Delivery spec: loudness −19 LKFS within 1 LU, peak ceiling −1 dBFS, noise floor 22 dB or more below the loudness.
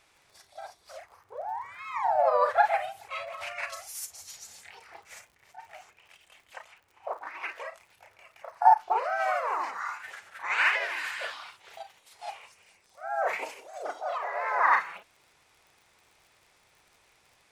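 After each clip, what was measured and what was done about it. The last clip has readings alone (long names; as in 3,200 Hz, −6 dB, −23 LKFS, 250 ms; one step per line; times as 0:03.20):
crackle rate 56 per second; integrated loudness −28.5 LKFS; sample peak −7.0 dBFS; target loudness −19.0 LKFS
→ click removal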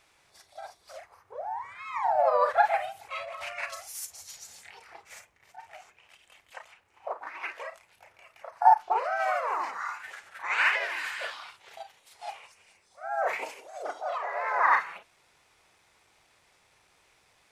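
crackle rate 0.34 per second; integrated loudness −28.5 LKFS; sample peak −7.0 dBFS; target loudness −19.0 LKFS
→ level +9.5 dB
brickwall limiter −1 dBFS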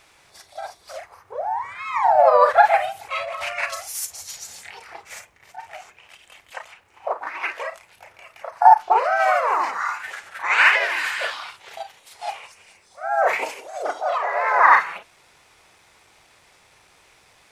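integrated loudness −19.5 LKFS; sample peak −1.0 dBFS; background noise floor −56 dBFS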